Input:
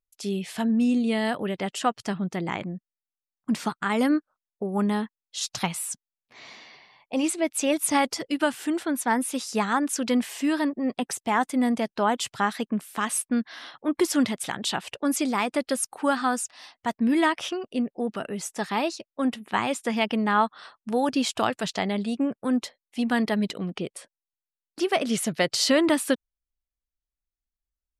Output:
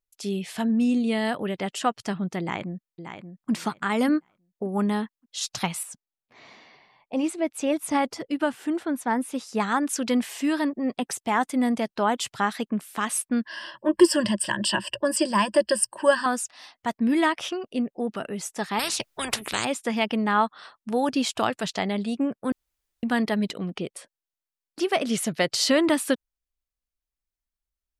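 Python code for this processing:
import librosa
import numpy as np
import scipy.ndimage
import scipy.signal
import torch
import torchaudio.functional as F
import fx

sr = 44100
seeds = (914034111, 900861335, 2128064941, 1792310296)

y = fx.echo_throw(x, sr, start_s=2.4, length_s=1.11, ms=580, feedback_pct=20, wet_db=-9.0)
y = fx.high_shelf(y, sr, hz=2100.0, db=-9.0, at=(5.83, 9.6))
y = fx.ripple_eq(y, sr, per_octave=1.3, db=18, at=(13.45, 16.26))
y = fx.spectral_comp(y, sr, ratio=4.0, at=(18.79, 19.65))
y = fx.edit(y, sr, fx.room_tone_fill(start_s=22.52, length_s=0.51), tone=tone)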